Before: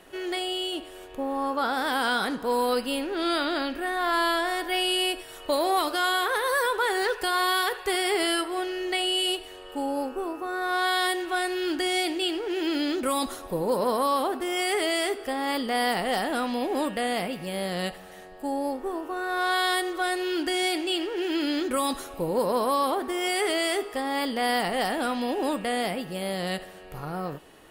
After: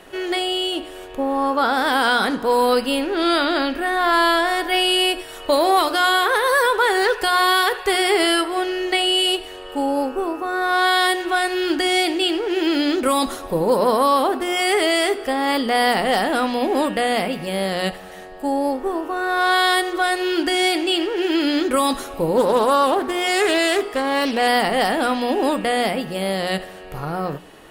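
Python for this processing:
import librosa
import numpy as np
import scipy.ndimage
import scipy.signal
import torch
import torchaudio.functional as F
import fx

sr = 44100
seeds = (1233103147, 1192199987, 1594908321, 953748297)

y = fx.high_shelf(x, sr, hz=7500.0, db=-4.5)
y = fx.hum_notches(y, sr, base_hz=60, count=6)
y = fx.doppler_dist(y, sr, depth_ms=0.17, at=(22.37, 24.48))
y = F.gain(torch.from_numpy(y), 8.0).numpy()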